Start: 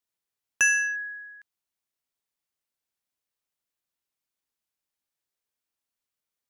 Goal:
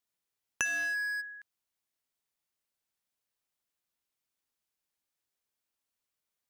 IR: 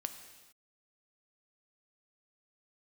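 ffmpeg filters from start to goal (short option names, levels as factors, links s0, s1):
-filter_complex "[0:a]acompressor=threshold=0.0316:ratio=6,asplit=3[s0][s1][s2];[s0]afade=t=out:st=0.64:d=0.02[s3];[s1]asplit=2[s4][s5];[s5]highpass=f=720:p=1,volume=50.1,asoftclip=type=tanh:threshold=0.0376[s6];[s4][s6]amix=inputs=2:normalize=0,lowpass=f=2900:p=1,volume=0.501,afade=t=in:st=0.64:d=0.02,afade=t=out:st=1.2:d=0.02[s7];[s2]afade=t=in:st=1.2:d=0.02[s8];[s3][s7][s8]amix=inputs=3:normalize=0"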